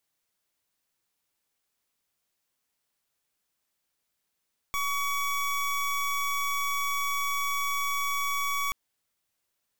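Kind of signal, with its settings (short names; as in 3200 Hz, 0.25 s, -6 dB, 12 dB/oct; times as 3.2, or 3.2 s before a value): pulse 1130 Hz, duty 25% -28.5 dBFS 3.98 s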